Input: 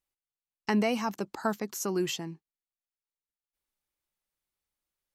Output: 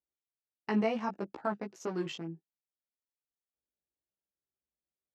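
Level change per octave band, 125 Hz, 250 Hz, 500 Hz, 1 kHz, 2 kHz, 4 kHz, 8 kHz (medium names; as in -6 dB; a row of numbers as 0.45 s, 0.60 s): -3.5 dB, -3.5 dB, -3.0 dB, -3.5 dB, -5.5 dB, -8.5 dB, -16.5 dB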